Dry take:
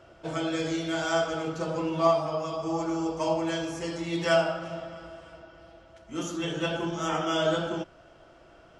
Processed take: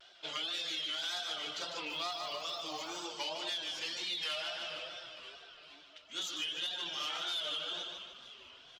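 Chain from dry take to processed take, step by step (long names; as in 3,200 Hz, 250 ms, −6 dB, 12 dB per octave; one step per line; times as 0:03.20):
stylus tracing distortion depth 0.075 ms
resonant band-pass 3,700 Hz, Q 3.3
in parallel at +1 dB: brickwall limiter −35.5 dBFS, peak gain reduction 9 dB
on the sum: tape wow and flutter 130 cents
echo with shifted repeats 468 ms, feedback 53%, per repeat −110 Hz, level −21 dB
reverb reduction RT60 0.69 s
repeating echo 149 ms, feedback 42%, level −7.5 dB
soft clipping −27 dBFS, distortion −23 dB
downward compressor 6 to 1, threshold −42 dBFS, peak gain reduction 9.5 dB
0:01.86–0:03.03: surface crackle 430 per second −56 dBFS
level +7 dB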